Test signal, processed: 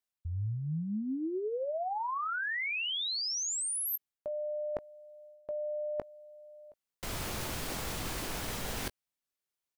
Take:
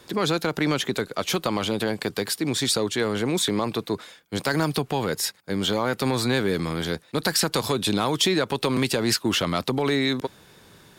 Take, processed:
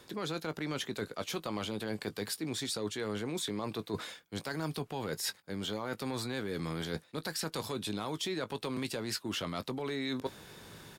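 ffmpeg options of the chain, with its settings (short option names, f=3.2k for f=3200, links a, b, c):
-filter_complex "[0:a]areverse,acompressor=threshold=-33dB:ratio=12,areverse,asplit=2[a][b];[b]adelay=19,volume=-13dB[c];[a][c]amix=inputs=2:normalize=0"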